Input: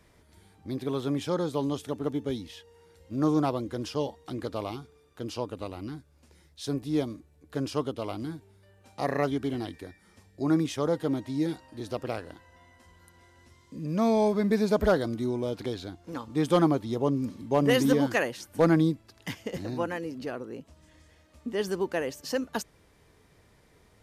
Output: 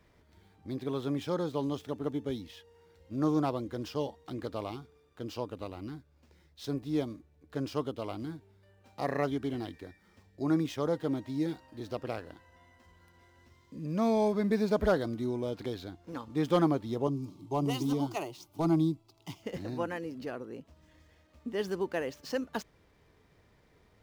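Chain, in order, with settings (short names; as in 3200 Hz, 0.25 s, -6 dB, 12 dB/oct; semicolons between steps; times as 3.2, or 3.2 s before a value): median filter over 5 samples; 17.07–19.43 fixed phaser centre 340 Hz, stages 8; gain -3.5 dB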